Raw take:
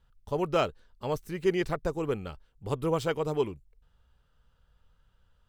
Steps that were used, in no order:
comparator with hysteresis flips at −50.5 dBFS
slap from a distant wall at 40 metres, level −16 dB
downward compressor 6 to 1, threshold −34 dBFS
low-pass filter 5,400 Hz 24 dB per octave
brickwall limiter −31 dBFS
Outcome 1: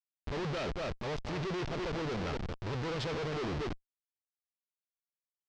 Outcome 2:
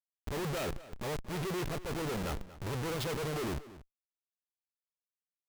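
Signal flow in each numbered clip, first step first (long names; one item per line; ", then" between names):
slap from a distant wall, then comparator with hysteresis, then downward compressor, then brickwall limiter, then low-pass filter
low-pass filter, then comparator with hysteresis, then downward compressor, then slap from a distant wall, then brickwall limiter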